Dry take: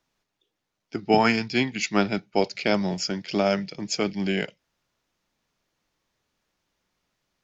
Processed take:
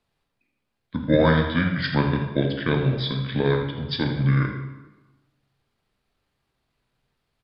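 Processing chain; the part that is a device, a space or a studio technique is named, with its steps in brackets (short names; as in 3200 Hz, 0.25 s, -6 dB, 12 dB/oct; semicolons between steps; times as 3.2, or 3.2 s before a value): monster voice (pitch shift -6 st; low shelf 150 Hz +7 dB; echo 82 ms -10.5 dB; reverb RT60 1.1 s, pre-delay 13 ms, DRR 3 dB); gain -1.5 dB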